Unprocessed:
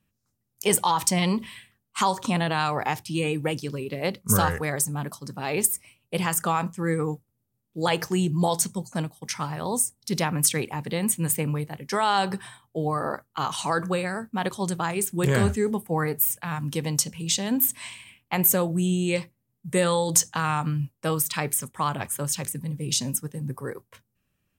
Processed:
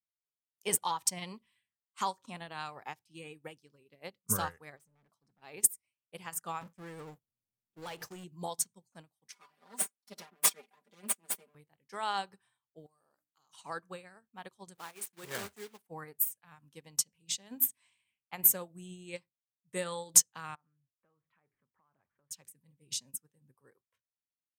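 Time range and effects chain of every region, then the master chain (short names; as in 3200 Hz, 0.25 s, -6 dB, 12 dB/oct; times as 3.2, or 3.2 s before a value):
4.77–5.42 high shelf 4600 Hz -11.5 dB + hard clip -33 dBFS
6.61–8.24 gate -41 dBFS, range -25 dB + compressor 16:1, threshold -24 dBFS + power-law curve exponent 0.5
9.32–11.55 minimum comb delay 4.1 ms + HPF 230 Hz + comb 5 ms, depth 83%
12.86–13.53 resonant high shelf 4000 Hz +13.5 dB, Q 1.5 + notches 60/120/180/240/300 Hz + compressor 5:1, threshold -38 dBFS
14.75–15.88 block floating point 3-bit + HPF 310 Hz 6 dB/oct
20.55–22.31 LPF 2000 Hz 24 dB/oct + compressor, threshold -38 dBFS
whole clip: low shelf 380 Hz -7 dB; upward expander 2.5:1, over -37 dBFS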